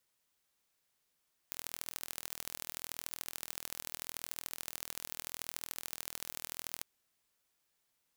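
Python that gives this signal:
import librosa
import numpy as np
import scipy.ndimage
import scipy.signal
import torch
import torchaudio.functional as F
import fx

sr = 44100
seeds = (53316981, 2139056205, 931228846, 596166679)

y = fx.impulse_train(sr, length_s=5.31, per_s=40.8, accent_every=3, level_db=-11.0)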